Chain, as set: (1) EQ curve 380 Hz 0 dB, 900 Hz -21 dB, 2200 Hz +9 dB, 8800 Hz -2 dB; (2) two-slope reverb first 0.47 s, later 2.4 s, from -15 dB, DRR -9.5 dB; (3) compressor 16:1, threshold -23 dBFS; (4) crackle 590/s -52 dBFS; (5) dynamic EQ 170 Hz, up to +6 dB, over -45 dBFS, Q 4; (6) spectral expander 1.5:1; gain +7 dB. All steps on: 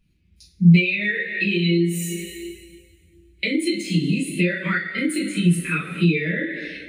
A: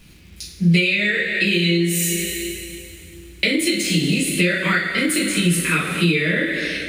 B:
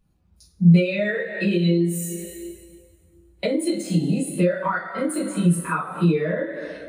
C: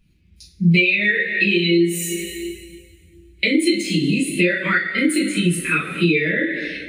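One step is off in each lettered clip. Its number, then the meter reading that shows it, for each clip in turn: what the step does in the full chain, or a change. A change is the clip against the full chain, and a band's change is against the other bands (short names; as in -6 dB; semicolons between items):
6, 125 Hz band -7.0 dB; 1, loudness change -1.0 LU; 5, 125 Hz band -8.0 dB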